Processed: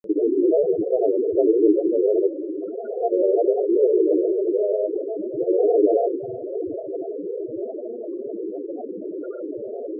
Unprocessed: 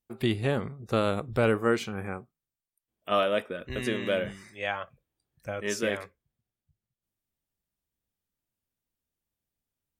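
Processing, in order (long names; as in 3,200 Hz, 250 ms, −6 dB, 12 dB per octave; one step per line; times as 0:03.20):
compressor on every frequency bin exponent 0.2
in parallel at −2 dB: speech leveller within 5 dB 2 s
on the sum: low-shelf EQ 170 Hz −4 dB
on a send: feedback delay with all-pass diffusion 973 ms, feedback 49%, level −12 dB
on the sum: dynamic equaliser 370 Hz, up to +8 dB, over −33 dBFS, Q 2.6
spectral peaks only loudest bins 4
granular cloud 100 ms, pitch spread up and down by 3 semitones
tape wow and flutter 20 cents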